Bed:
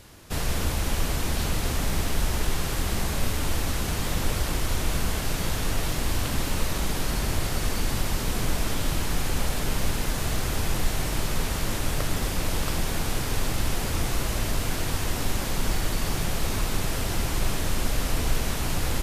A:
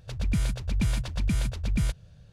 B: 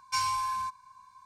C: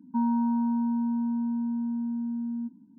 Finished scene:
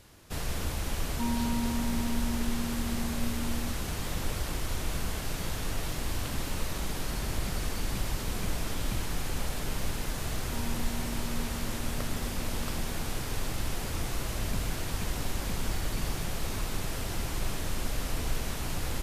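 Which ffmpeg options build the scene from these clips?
ffmpeg -i bed.wav -i cue0.wav -i cue1.wav -i cue2.wav -filter_complex "[3:a]asplit=2[link_01][link_02];[1:a]asplit=2[link_03][link_04];[0:a]volume=-6.5dB[link_05];[link_02]aecho=1:1:90:0.631[link_06];[link_04]aeval=exprs='clip(val(0),-1,0.0316)':channel_layout=same[link_07];[link_01]atrim=end=2.98,asetpts=PTS-STARTPTS,volume=-6.5dB,afade=type=in:duration=0.004:curve=hsin,afade=type=out:start_time=2.976:duration=0.004:curve=hsin,adelay=1050[link_08];[link_03]atrim=end=2.32,asetpts=PTS-STARTPTS,volume=-12.5dB,afade=type=in:duration=0.004:curve=hsin,afade=type=out:start_time=2.316:duration=0.004:curve=hsin,adelay=314874S[link_09];[link_06]atrim=end=2.98,asetpts=PTS-STARTPTS,volume=-18dB,afade=type=in:duration=0.004:curve=hsin,afade=type=out:start_time=2.976:duration=0.004:curve=hsin,adelay=10370[link_10];[link_07]atrim=end=2.32,asetpts=PTS-STARTPTS,volume=-10dB,afade=type=in:duration=0.004:curve=hsin,afade=type=out:start_time=2.316:duration=0.004:curve=hsin,adelay=14200[link_11];[link_05][link_08][link_09][link_10][link_11]amix=inputs=5:normalize=0" out.wav

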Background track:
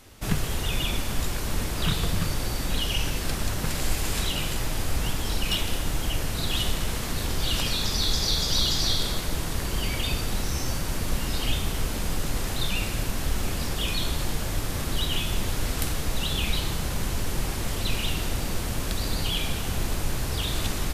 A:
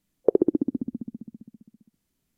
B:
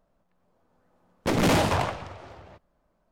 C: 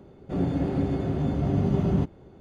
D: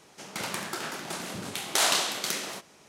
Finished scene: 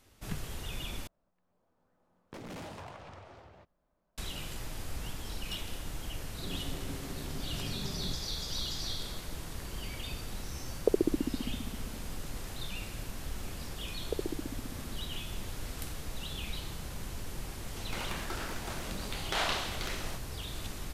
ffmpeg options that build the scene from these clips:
ffmpeg -i bed.wav -i cue0.wav -i cue1.wav -i cue2.wav -i cue3.wav -filter_complex "[1:a]asplit=2[link_01][link_02];[0:a]volume=-12.5dB[link_03];[2:a]acompressor=threshold=-36dB:ratio=6:attack=3.2:release=140:knee=1:detection=peak[link_04];[4:a]acrossover=split=4200[link_05][link_06];[link_06]acompressor=threshold=-43dB:ratio=4:attack=1:release=60[link_07];[link_05][link_07]amix=inputs=2:normalize=0[link_08];[link_03]asplit=2[link_09][link_10];[link_09]atrim=end=1.074[link_11];[link_04]atrim=end=3.11,asetpts=PTS-STARTPTS,volume=-7.5dB[link_12];[link_10]atrim=start=4.176[link_13];[3:a]atrim=end=2.4,asetpts=PTS-STARTPTS,volume=-17.5dB,afade=type=in:duration=0.004:curve=hsin,afade=type=out:start_time=2.396:duration=0.004:curve=hsin,adelay=6110[link_14];[link_01]atrim=end=2.37,asetpts=PTS-STARTPTS,volume=-7dB,afade=type=in:duration=0.004:curve=hsin,afade=type=out:start_time=2.366:duration=0.004:curve=hsin,adelay=10590[link_15];[link_02]atrim=end=2.37,asetpts=PTS-STARTPTS,volume=-16dB,afade=type=in:duration=0.004:curve=hsin,afade=type=out:start_time=2.366:duration=0.004:curve=hsin,adelay=13840[link_16];[link_08]atrim=end=2.88,asetpts=PTS-STARTPTS,volume=-5dB,afade=type=in:duration=0.004:curve=hsin,afade=type=out:start_time=2.876:duration=0.004:curve=hsin,adelay=17570[link_17];[link_11][link_12]acrossfade=duration=0.004:curve1=hsin:curve2=hsin[link_18];[link_18][link_13]acrossfade=duration=0.004:curve1=hsin:curve2=hsin[link_19];[link_19][link_14][link_15][link_16][link_17]amix=inputs=5:normalize=0" out.wav

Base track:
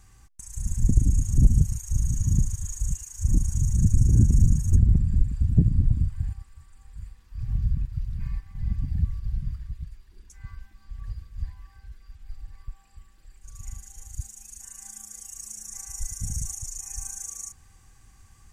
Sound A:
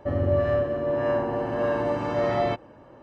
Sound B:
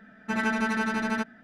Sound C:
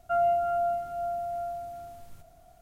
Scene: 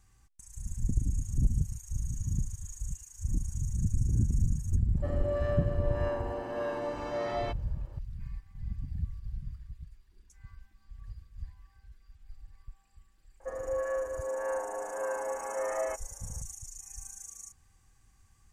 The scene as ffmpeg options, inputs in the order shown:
ffmpeg -i bed.wav -i cue0.wav -filter_complex "[1:a]asplit=2[link_01][link_02];[0:a]volume=-9.5dB[link_03];[link_01]bass=frequency=250:gain=-6,treble=frequency=4000:gain=8[link_04];[link_02]highpass=frequency=560:width_type=q:width=0.5412,highpass=frequency=560:width_type=q:width=1.307,lowpass=frequency=2300:width_type=q:width=0.5176,lowpass=frequency=2300:width_type=q:width=0.7071,lowpass=frequency=2300:width_type=q:width=1.932,afreqshift=-54[link_05];[link_04]atrim=end=3.02,asetpts=PTS-STARTPTS,volume=-8.5dB,afade=type=in:duration=0.004:curve=hsin,afade=type=out:start_time=3.016:duration=0.004:curve=hsin,adelay=219177S[link_06];[link_05]atrim=end=3.02,asetpts=PTS-STARTPTS,volume=-6dB,afade=type=in:duration=0.004:curve=hsin,afade=type=out:start_time=3.016:duration=0.004:curve=hsin,adelay=13400[link_07];[link_03][link_06][link_07]amix=inputs=3:normalize=0" out.wav

